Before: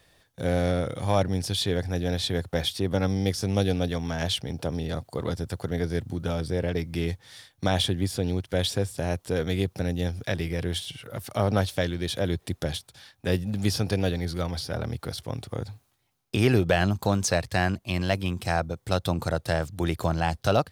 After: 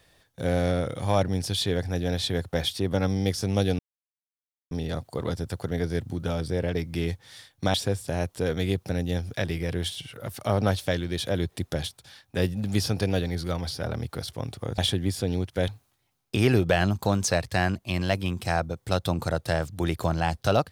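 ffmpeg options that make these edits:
-filter_complex "[0:a]asplit=6[a][b][c][d][e][f];[a]atrim=end=3.79,asetpts=PTS-STARTPTS,afade=t=out:st=3.786:d=0.004:c=hsin[g];[b]atrim=start=3.79:end=4.71,asetpts=PTS-STARTPTS,volume=0[h];[c]atrim=start=4.71:end=7.742,asetpts=PTS-STARTPTS,afade=t=in:d=0.004:c=hsin[i];[d]atrim=start=8.638:end=15.682[j];[e]atrim=start=7.738:end=8.642[k];[f]atrim=start=15.678[l];[g][h][i]concat=n=3:v=0:a=1[m];[m][j]acrossfade=d=0.004:c1=hsin:c2=hsin[n];[n][k]acrossfade=d=0.004:c1=hsin:c2=hsin[o];[o][l]acrossfade=d=0.004:c1=hsin:c2=hsin"

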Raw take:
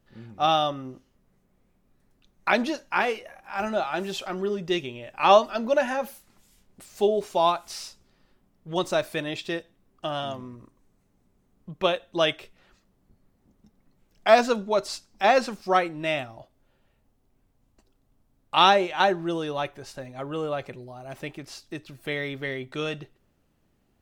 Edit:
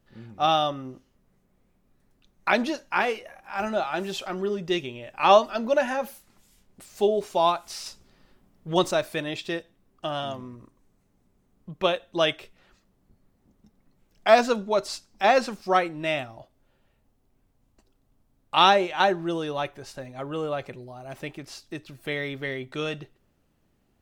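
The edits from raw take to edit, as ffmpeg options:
-filter_complex "[0:a]asplit=3[a][b][c];[a]atrim=end=7.862[d];[b]atrim=start=7.858:end=8.912,asetpts=PTS-STARTPTS,volume=4.5dB[e];[c]atrim=start=8.908[f];[d][e]acrossfade=d=0.004:c1=hsin:c2=hsin[g];[g][f]acrossfade=d=0.004:c1=hsin:c2=hsin"

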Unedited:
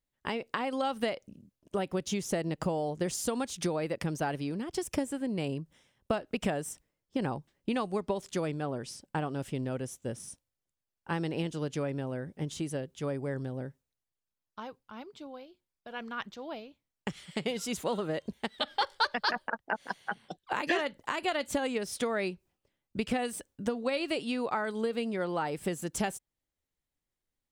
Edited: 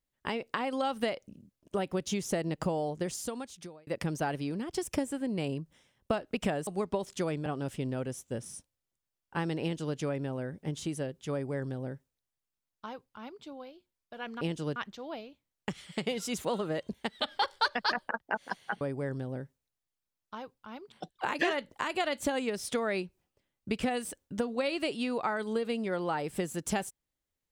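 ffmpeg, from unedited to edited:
-filter_complex "[0:a]asplit=8[a][b][c][d][e][f][g][h];[a]atrim=end=3.87,asetpts=PTS-STARTPTS,afade=t=out:st=2.82:d=1.05[i];[b]atrim=start=3.87:end=6.672,asetpts=PTS-STARTPTS,afade=t=in:d=0.004:c=hsin[j];[c]atrim=start=7.828:end=8.622[k];[d]atrim=start=9.198:end=16.152[l];[e]atrim=start=11.358:end=11.712[m];[f]atrim=start=16.148:end=20.202[n];[g]atrim=start=13.058:end=15.172[o];[h]atrim=start=20.198[p];[i][j]concat=n=2:v=0:a=1[q];[q][k]acrossfade=d=0.004:c1=hsin:c2=hsin[r];[r][l]acrossfade=d=0.004:c1=hsin:c2=hsin[s];[s][m]acrossfade=d=0.004:c1=hsin:c2=hsin[t];[t][n]acrossfade=d=0.004:c1=hsin:c2=hsin[u];[u][o]acrossfade=d=0.004:c1=hsin:c2=hsin[v];[v][p]acrossfade=d=0.004:c1=hsin:c2=hsin"

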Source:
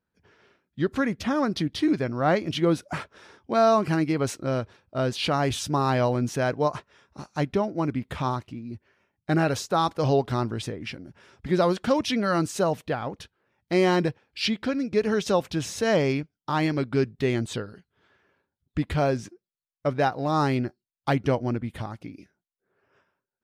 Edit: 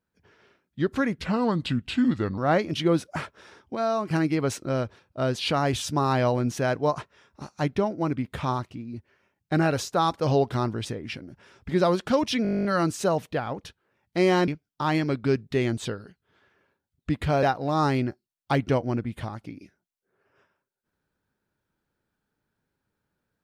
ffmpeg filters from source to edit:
-filter_complex "[0:a]asplit=18[a][b][c][d][e][f][g][h][i][j][k][l][m][n][o][p][q][r];[a]atrim=end=1.184[s];[b]atrim=start=1.18:end=2.15,asetpts=PTS-STARTPTS,asetrate=35721,aresample=44100,atrim=end_sample=52811,asetpts=PTS-STARTPTS[t];[c]atrim=start=2.146:end=3.522[u];[d]atrim=start=3.518:end=3.882,asetpts=PTS-STARTPTS,volume=-6.5dB[v];[e]atrim=start=3.878:end=12.222[w];[f]atrim=start=12.198:end=12.222[x];[g]atrim=start=12.198:end=12.222[y];[h]atrim=start=12.198:end=12.222[z];[i]atrim=start=12.198:end=12.222[aa];[j]atrim=start=12.198:end=12.222[ab];[k]atrim=start=12.198:end=12.222[ac];[l]atrim=start=12.198:end=12.222[ad];[m]atrim=start=12.198:end=12.222[ae];[n]atrim=start=12.198:end=12.222[af];[o]atrim=start=12.198:end=12.222[ag];[p]atrim=start=12.198:end=14.032[ah];[q]atrim=start=16.158:end=19.112[ai];[r]atrim=start=19.998[aj];[s][t]acrossfade=d=0.004:c1=hsin:c2=hsin[ak];[ak][u]acrossfade=d=0.004:c1=hsin:c2=hsin[al];[al][v]acrossfade=d=0.004:c1=hsin:c2=hsin[am];[am][w]acrossfade=d=0.004:c1=hsin:c2=hsin[an];[an][x]acrossfade=d=0.004:c1=hsin:c2=hsin[ao];[ao][y]acrossfade=d=0.004:c1=hsin:c2=hsin[ap];[ap][z]acrossfade=d=0.004:c1=hsin:c2=hsin[aq];[aq][aa]acrossfade=d=0.004:c1=hsin:c2=hsin[ar];[ar][ab]acrossfade=d=0.004:c1=hsin:c2=hsin[as];[as][ac]acrossfade=d=0.004:c1=hsin:c2=hsin[at];[at][ad]acrossfade=d=0.004:c1=hsin:c2=hsin[au];[au][ae]acrossfade=d=0.004:c1=hsin:c2=hsin[av];[av][af]acrossfade=d=0.004:c1=hsin:c2=hsin[aw];[aw][ag]acrossfade=d=0.004:c1=hsin:c2=hsin[ax];[ax][ah]acrossfade=d=0.004:c1=hsin:c2=hsin[ay];[ay][ai]acrossfade=d=0.004:c1=hsin:c2=hsin[az];[az][aj]acrossfade=d=0.004:c1=hsin:c2=hsin"

